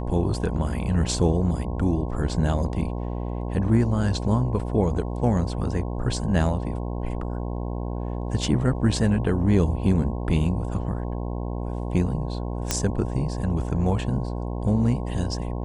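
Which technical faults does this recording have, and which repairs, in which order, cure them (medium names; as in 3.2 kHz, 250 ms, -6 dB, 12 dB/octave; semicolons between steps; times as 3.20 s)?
buzz 60 Hz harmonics 18 -29 dBFS
12.71 s: pop -6 dBFS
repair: de-click; de-hum 60 Hz, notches 18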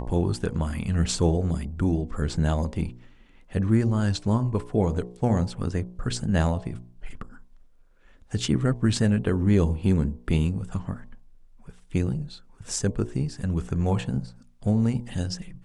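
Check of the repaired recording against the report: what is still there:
nothing left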